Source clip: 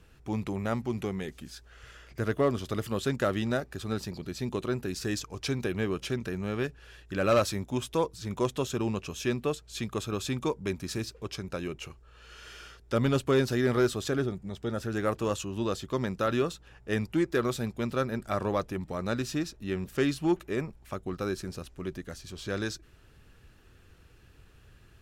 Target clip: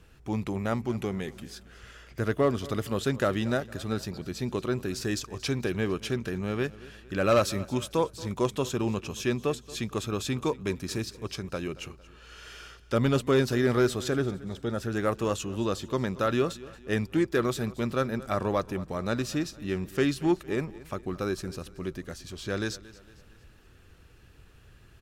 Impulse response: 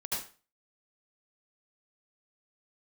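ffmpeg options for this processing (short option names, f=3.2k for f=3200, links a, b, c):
-af "aecho=1:1:228|456|684|912:0.112|0.0516|0.0237|0.0109,volume=1.5dB"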